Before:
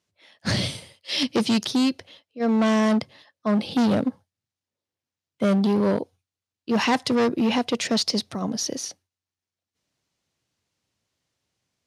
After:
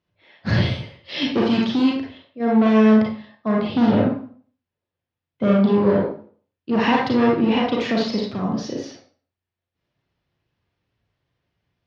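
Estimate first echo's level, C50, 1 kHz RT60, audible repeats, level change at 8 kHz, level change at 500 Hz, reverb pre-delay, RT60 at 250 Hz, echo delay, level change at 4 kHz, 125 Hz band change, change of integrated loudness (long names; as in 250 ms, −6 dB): no echo audible, 2.0 dB, 0.45 s, no echo audible, below −10 dB, +5.0 dB, 32 ms, 0.45 s, no echo audible, −2.5 dB, +6.0 dB, +4.0 dB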